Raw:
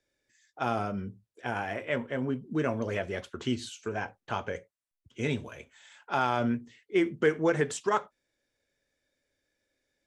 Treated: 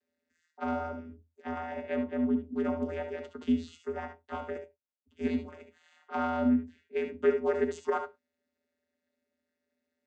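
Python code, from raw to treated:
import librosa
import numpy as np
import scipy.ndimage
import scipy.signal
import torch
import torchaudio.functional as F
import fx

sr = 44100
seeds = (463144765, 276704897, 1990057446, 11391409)

y = fx.vocoder(x, sr, bands=16, carrier='square', carrier_hz=82.7)
y = fx.room_early_taps(y, sr, ms=(64, 74), db=(-11.5, -10.0))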